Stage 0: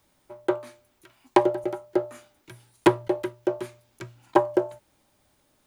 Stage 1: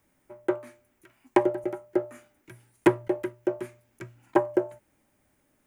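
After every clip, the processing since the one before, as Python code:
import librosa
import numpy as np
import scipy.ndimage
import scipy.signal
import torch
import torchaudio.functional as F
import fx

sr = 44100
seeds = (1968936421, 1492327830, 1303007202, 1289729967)

y = fx.graphic_eq(x, sr, hz=(250, 1000, 2000, 4000), db=(4, -3, 5, -10))
y = y * librosa.db_to_amplitude(-3.0)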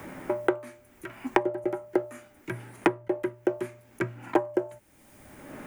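y = fx.band_squash(x, sr, depth_pct=100)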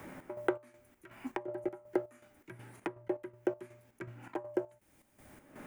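y = fx.chopper(x, sr, hz=2.7, depth_pct=65, duty_pct=55)
y = y * librosa.db_to_amplitude(-6.5)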